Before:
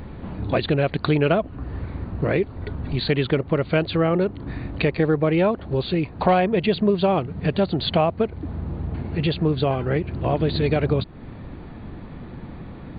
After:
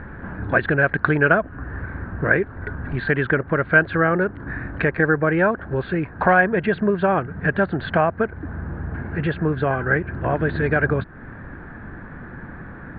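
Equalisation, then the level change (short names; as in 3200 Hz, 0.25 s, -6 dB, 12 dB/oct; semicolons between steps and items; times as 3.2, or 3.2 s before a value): synth low-pass 1600 Hz, resonance Q 9.7; -1.0 dB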